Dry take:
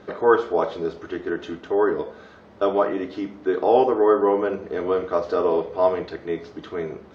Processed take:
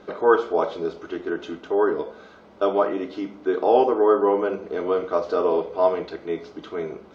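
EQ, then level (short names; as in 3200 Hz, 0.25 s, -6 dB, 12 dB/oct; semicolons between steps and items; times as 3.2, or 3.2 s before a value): bell 100 Hz -9 dB 1.1 oct; notch 1800 Hz, Q 7.7; 0.0 dB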